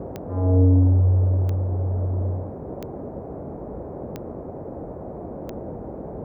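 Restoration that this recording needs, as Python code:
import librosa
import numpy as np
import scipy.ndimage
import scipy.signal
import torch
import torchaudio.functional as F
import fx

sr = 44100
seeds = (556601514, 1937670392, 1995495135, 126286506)

y = fx.fix_declick_ar(x, sr, threshold=10.0)
y = fx.noise_reduce(y, sr, print_start_s=4.51, print_end_s=5.01, reduce_db=30.0)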